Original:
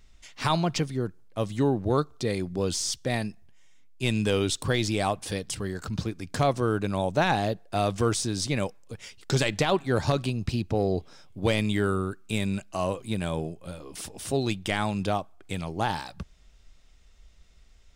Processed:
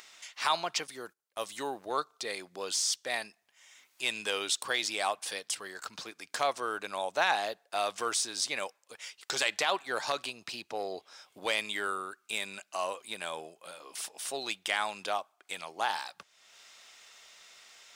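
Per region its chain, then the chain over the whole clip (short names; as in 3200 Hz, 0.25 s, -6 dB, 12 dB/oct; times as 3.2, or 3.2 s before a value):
0.87–1.86 gate -44 dBFS, range -17 dB + high shelf 7100 Hz +9.5 dB
whole clip: HPF 820 Hz 12 dB/oct; upward compressor, threshold -42 dBFS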